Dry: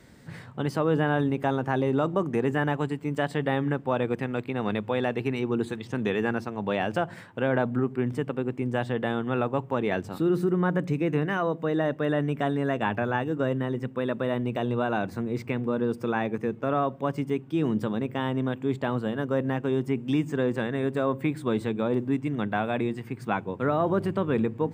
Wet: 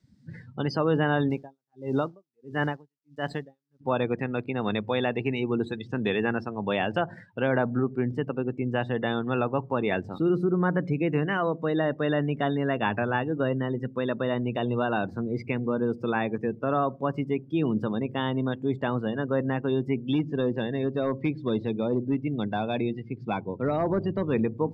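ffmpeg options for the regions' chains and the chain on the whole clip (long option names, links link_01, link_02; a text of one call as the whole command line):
ffmpeg -i in.wav -filter_complex "[0:a]asettb=1/sr,asplit=3[link_01][link_02][link_03];[link_01]atrim=end=1.304[link_04];[link_02]atrim=start=1.3:end=3.81,asetpts=PTS-STARTPTS,afade=type=in:duration=0.004:curve=qsin,afade=type=out:start_time=2.506:duration=0.004:curve=qsin,acrusher=bits=8:dc=4:mix=0:aa=0.000001,aeval=exprs='val(0)*pow(10,-38*(0.5-0.5*cos(2*PI*1.5*n/s))/20)':channel_layout=same[link_05];[link_03]atrim=start=3.806[link_06];[link_04][link_05]acrossfade=duration=0.004:curve1=hsin:curve2=qsin[link_07];[link_07][link_06]acrossfade=duration=0.004:curve1=qsin:curve2=hsin,asettb=1/sr,asplit=3[link_08][link_09][link_10];[link_08]atrim=end=19.944[link_11];[link_09]atrim=start=19.94:end=24.33,asetpts=PTS-STARTPTS,afade=type=in:duration=0.004:curve=qsin,afade=type=out:start_time=4.386:duration=0.004:curve=qsin,lowpass=frequency=5200:width=0.5412,lowpass=frequency=5200:width=1.3066,equalizer=frequency=1400:width=1.5:gain=-6,volume=18.5dB,asoftclip=hard,volume=-18.5dB[link_12];[link_10]atrim=start=24.326[link_13];[link_11][link_12]acrossfade=duration=0.004:curve1=hsin:curve2=qsin[link_14];[link_14][link_13]acrossfade=duration=0.004:curve1=qsin:curve2=hsin,afftdn=noise_reduction=25:noise_floor=-40,equalizer=frequency=5000:width=1.2:gain=13.5" out.wav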